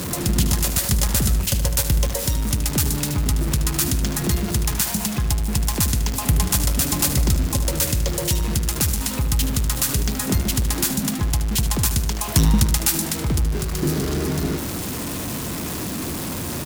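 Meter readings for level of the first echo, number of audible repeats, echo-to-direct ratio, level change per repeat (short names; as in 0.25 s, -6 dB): -10.5 dB, 3, -9.5 dB, -6.5 dB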